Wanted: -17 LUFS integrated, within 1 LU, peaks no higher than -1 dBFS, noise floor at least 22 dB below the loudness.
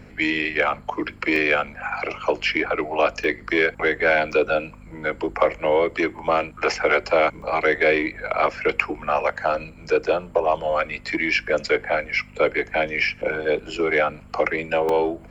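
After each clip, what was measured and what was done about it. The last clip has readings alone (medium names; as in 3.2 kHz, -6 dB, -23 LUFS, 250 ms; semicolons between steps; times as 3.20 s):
dropouts 6; longest dropout 2.2 ms; hum 50 Hz; highest harmonic 250 Hz; hum level -45 dBFS; loudness -22.0 LUFS; peak level -3.5 dBFS; loudness target -17.0 LUFS
-> interpolate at 0.55/1.36/3.24/4.32/7.42/14.89 s, 2.2 ms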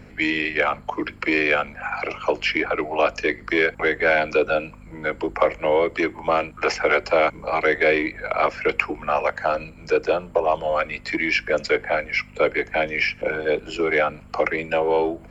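dropouts 0; hum 50 Hz; highest harmonic 250 Hz; hum level -45 dBFS
-> de-hum 50 Hz, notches 5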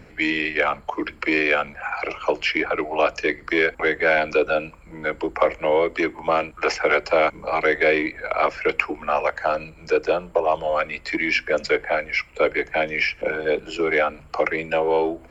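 hum not found; loudness -22.0 LUFS; peak level -3.5 dBFS; loudness target -17.0 LUFS
-> trim +5 dB; peak limiter -1 dBFS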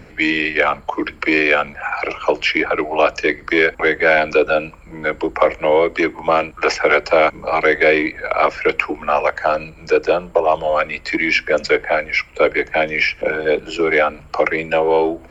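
loudness -17.0 LUFS; peak level -1.0 dBFS; noise floor -42 dBFS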